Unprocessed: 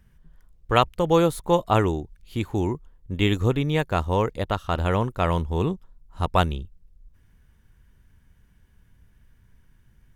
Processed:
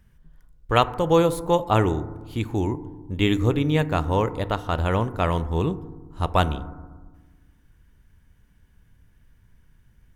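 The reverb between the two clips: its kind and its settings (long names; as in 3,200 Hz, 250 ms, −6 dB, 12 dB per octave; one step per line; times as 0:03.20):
feedback delay network reverb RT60 1.3 s, low-frequency decay 1.5×, high-frequency decay 0.25×, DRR 13 dB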